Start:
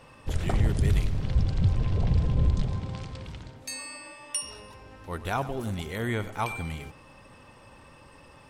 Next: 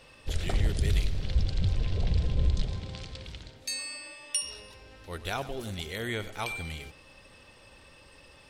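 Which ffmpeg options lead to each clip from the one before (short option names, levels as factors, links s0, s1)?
-af "equalizer=f=125:t=o:w=1:g=-7,equalizer=f=250:t=o:w=1:g=-5,equalizer=f=1000:t=o:w=1:g=-8,equalizer=f=4000:t=o:w=1:g=6"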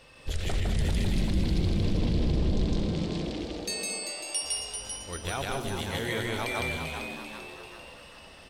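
-filter_complex "[0:a]asplit=2[s0][s1];[s1]aecho=0:1:157.4|224.5:0.891|0.316[s2];[s0][s2]amix=inputs=2:normalize=0,alimiter=limit=0.1:level=0:latency=1:release=22,asplit=2[s3][s4];[s4]asplit=6[s5][s6][s7][s8][s9][s10];[s5]adelay=391,afreqshift=140,volume=0.473[s11];[s6]adelay=782,afreqshift=280,volume=0.243[s12];[s7]adelay=1173,afreqshift=420,volume=0.123[s13];[s8]adelay=1564,afreqshift=560,volume=0.0631[s14];[s9]adelay=1955,afreqshift=700,volume=0.032[s15];[s10]adelay=2346,afreqshift=840,volume=0.0164[s16];[s11][s12][s13][s14][s15][s16]amix=inputs=6:normalize=0[s17];[s3][s17]amix=inputs=2:normalize=0"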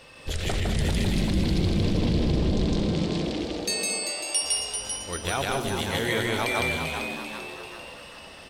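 -af "lowshelf=f=74:g=-8,volume=1.88"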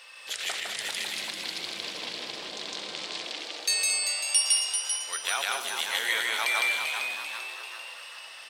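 -af "highpass=1200,volume=1.33"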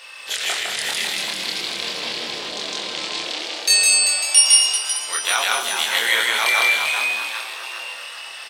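-filter_complex "[0:a]asplit=2[s0][s1];[s1]adelay=26,volume=0.794[s2];[s0][s2]amix=inputs=2:normalize=0,volume=2.24"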